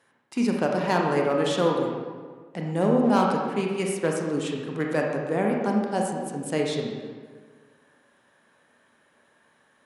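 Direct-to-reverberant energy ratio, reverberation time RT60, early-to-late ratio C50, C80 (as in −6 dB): −0.5 dB, 1.6 s, 1.5 dB, 3.5 dB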